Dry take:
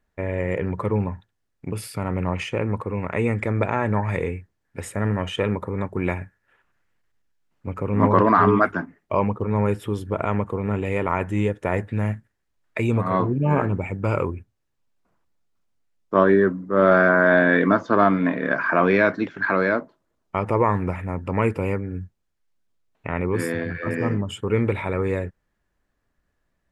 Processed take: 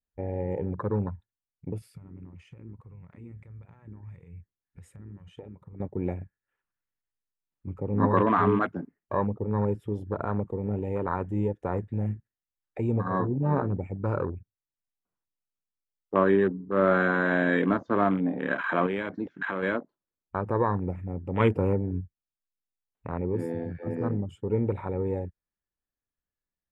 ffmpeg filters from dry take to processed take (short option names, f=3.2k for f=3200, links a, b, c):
-filter_complex "[0:a]asettb=1/sr,asplit=3[a][b][c];[a]atrim=end=1.784[d];[b]atrim=start=1.78:end=5.8,asetpts=PTS-STARTPTS,afade=t=in:d=0.004:c=qsin,afade=t=out:st=4.016:d=0.004:c=qsin,acompressor=threshold=-32dB:ratio=10:attack=3.2:release=140:knee=1:detection=peak[e];[c]atrim=start=5.796[f];[d][e]acrossfade=d=0.004:c1=hsin:c2=qsin[g];[g][f]acrossfade=d=0.004:c1=qsin:c2=hsin,asettb=1/sr,asplit=3[h][i][j];[h]atrim=end=18.864[k];[i]atrim=start=18.86:end=19.63,asetpts=PTS-STARTPTS,afade=t=in:d=0.004:c=qsin,afade=t=out:st=0.766:d=0.004:c=qsin,acompressor=threshold=-21dB:ratio=3:attack=3.2:release=140:knee=1:detection=peak[l];[j]atrim=start=19.626[m];[k][l]acrossfade=d=0.004:c1=hsin:c2=qsin[n];[n][m]acrossfade=d=0.004:c1=qsin:c2=hsin,asettb=1/sr,asplit=3[o][p][q];[o]atrim=end=21.404[r];[p]atrim=start=21.4:end=22.01,asetpts=PTS-STARTPTS,afade=t=in:d=0.004:c=qsin,afade=t=out:st=0.606:d=0.004:c=qsin,acontrast=28[s];[q]atrim=start=22.006[t];[r][s]acrossfade=d=0.004:c1=hsin:c2=qsin[u];[u][t]acrossfade=d=0.004:c1=qsin:c2=hsin,afwtdn=0.0501,bandreject=f=640:w=12,adynamicequalizer=threshold=0.0224:dfrequency=1400:dqfactor=1.5:tfrequency=1400:tqfactor=1.5:attack=5:release=100:ratio=0.375:range=2.5:mode=cutabove:tftype=bell,volume=-5dB"